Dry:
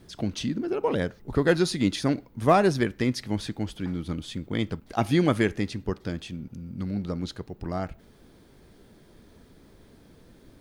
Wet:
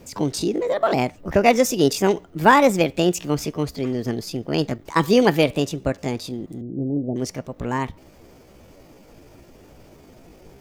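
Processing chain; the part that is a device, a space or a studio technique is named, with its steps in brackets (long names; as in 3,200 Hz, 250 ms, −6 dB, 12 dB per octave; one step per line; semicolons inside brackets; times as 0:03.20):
chipmunk voice (pitch shifter +6 semitones)
0:06.61–0:07.16: Butterworth low-pass 620 Hz 36 dB per octave
level +6 dB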